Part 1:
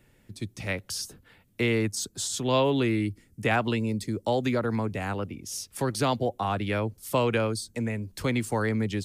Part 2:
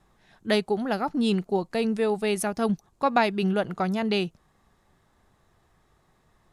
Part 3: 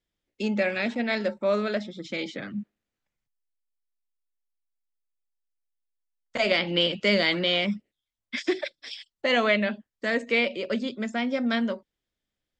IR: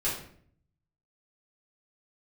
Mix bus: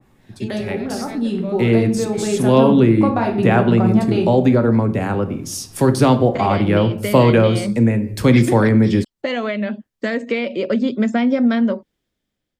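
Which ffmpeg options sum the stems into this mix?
-filter_complex "[0:a]volume=-2dB,asplit=2[a][b];[b]volume=-14dB[c];[1:a]volume=0dB,asplit=2[d][e];[e]volume=-16dB[f];[2:a]volume=-4.5dB[g];[d][g]amix=inputs=2:normalize=0,acompressor=threshold=-32dB:ratio=6,volume=0dB[h];[3:a]atrim=start_sample=2205[i];[c][f]amix=inputs=2:normalize=0[j];[j][i]afir=irnorm=-1:irlink=0[k];[a][h][k]amix=inputs=3:normalize=0,equalizer=f=210:t=o:w=2.7:g=6.5,dynaudnorm=f=660:g=5:m=16dB,adynamicequalizer=threshold=0.02:dfrequency=2000:dqfactor=0.7:tfrequency=2000:tqfactor=0.7:attack=5:release=100:ratio=0.375:range=4:mode=cutabove:tftype=highshelf"

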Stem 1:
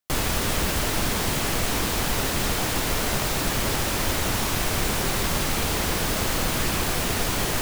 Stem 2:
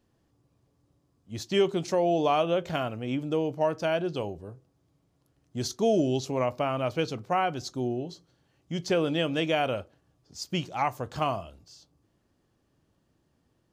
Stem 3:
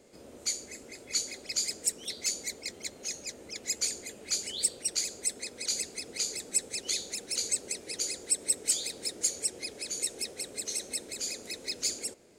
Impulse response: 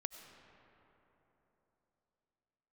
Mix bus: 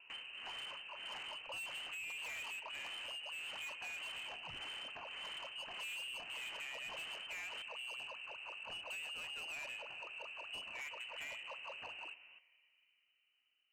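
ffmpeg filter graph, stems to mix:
-filter_complex "[0:a]tremolo=f=1.7:d=0.89,volume=-16dB[a];[1:a]volume=-14dB,asplit=2[b][c];[c]volume=-4.5dB[d];[2:a]volume=-1.5dB,asplit=2[e][f];[f]volume=-17.5dB[g];[3:a]atrim=start_sample=2205[h];[d][g]amix=inputs=2:normalize=0[i];[i][h]afir=irnorm=-1:irlink=0[j];[a][b][e][j]amix=inputs=4:normalize=0,lowpass=f=2.6k:t=q:w=0.5098,lowpass=f=2.6k:t=q:w=0.6013,lowpass=f=2.6k:t=q:w=0.9,lowpass=f=2.6k:t=q:w=2.563,afreqshift=-3100,asoftclip=type=tanh:threshold=-38dB,acompressor=threshold=-44dB:ratio=6"

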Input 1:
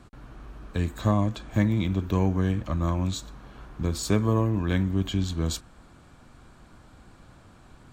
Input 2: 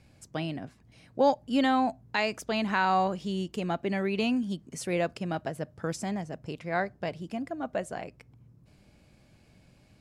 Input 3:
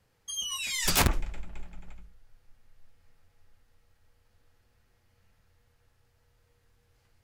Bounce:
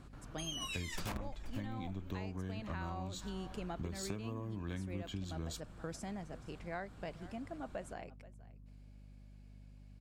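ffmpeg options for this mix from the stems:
-filter_complex "[0:a]volume=-6dB[a];[1:a]aeval=exprs='val(0)+0.00562*(sin(2*PI*50*n/s)+sin(2*PI*2*50*n/s)/2+sin(2*PI*3*50*n/s)/3+sin(2*PI*4*50*n/s)/4+sin(2*PI*5*50*n/s)/5)':c=same,volume=-10dB,asplit=2[b][c];[c]volume=-20dB[d];[2:a]highshelf=f=3k:g=-11,adelay=100,volume=0.5dB,asplit=2[e][f];[f]volume=-20.5dB[g];[d][g]amix=inputs=2:normalize=0,aecho=0:1:479:1[h];[a][b][e][h]amix=inputs=4:normalize=0,acompressor=threshold=-37dB:ratio=16"

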